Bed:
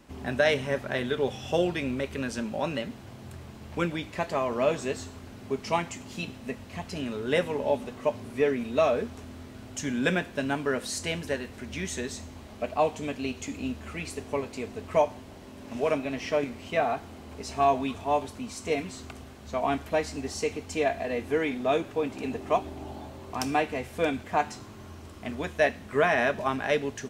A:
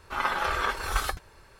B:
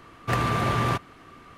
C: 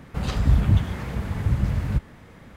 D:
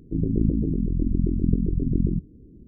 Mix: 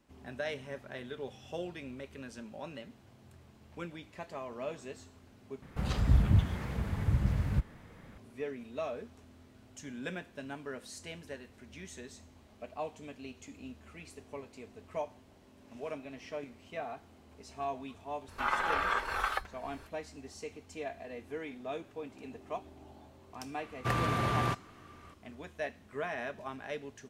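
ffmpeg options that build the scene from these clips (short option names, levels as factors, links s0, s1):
-filter_complex "[0:a]volume=0.2[s0];[1:a]acrossover=split=450|1400|3100[s1][s2][s3][s4];[s1]acompressor=threshold=0.00398:ratio=3[s5];[s2]acompressor=threshold=0.0251:ratio=3[s6];[s3]acompressor=threshold=0.0178:ratio=3[s7];[s4]acompressor=threshold=0.00126:ratio=3[s8];[s5][s6][s7][s8]amix=inputs=4:normalize=0[s9];[s0]asplit=2[s10][s11];[s10]atrim=end=5.624[s12];[3:a]atrim=end=2.56,asetpts=PTS-STARTPTS,volume=0.473[s13];[s11]atrim=start=8.176[s14];[s9]atrim=end=1.59,asetpts=PTS-STARTPTS,afade=t=in:d=0.004:c=hsin,afade=t=out:st=1.586:d=0.004:c=hsin,adelay=806148S[s15];[2:a]atrim=end=1.57,asetpts=PTS-STARTPTS,volume=0.473,afade=t=in:d=0.004:c=hsin,afade=t=out:st=1.566:d=0.004:c=hsin,adelay=23570[s16];[s12][s13]acrossfade=d=0.004:c1=hsin:c2=hsin[s17];[s17][s14]acrossfade=d=0.004:c1=hsin:c2=hsin[s18];[s18][s15][s16]amix=inputs=3:normalize=0"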